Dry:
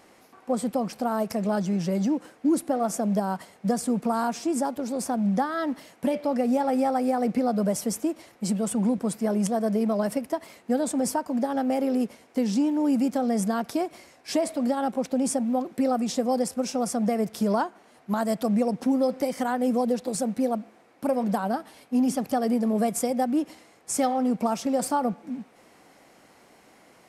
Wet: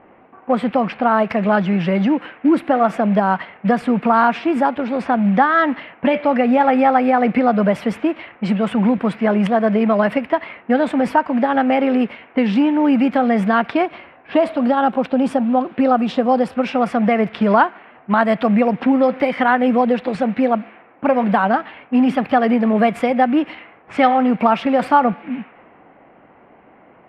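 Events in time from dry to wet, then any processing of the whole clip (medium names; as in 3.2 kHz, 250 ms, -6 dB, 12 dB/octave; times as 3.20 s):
13.85–16.56 s: dynamic bell 2.1 kHz, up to -8 dB, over -59 dBFS
whole clip: dynamic bell 2.8 kHz, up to -6 dB, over -55 dBFS, Q 2.3; level-controlled noise filter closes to 690 Hz, open at -23 dBFS; FFT filter 500 Hz 0 dB, 2.8 kHz +15 dB, 6.3 kHz -24 dB; trim +8 dB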